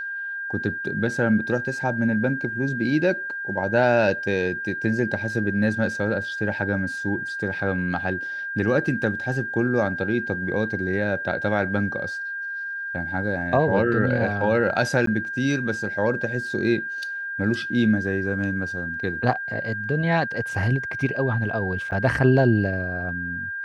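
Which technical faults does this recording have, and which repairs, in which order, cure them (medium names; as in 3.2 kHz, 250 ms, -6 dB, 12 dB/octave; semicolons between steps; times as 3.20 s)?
whine 1.6 kHz -28 dBFS
15.06–15.07 s: dropout 13 ms
21.91–21.92 s: dropout 9.6 ms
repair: band-stop 1.6 kHz, Q 30; interpolate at 15.06 s, 13 ms; interpolate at 21.91 s, 9.6 ms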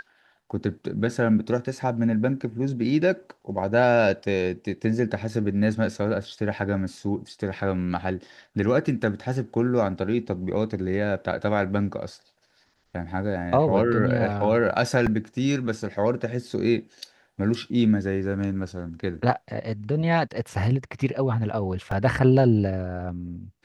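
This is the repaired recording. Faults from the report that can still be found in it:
nothing left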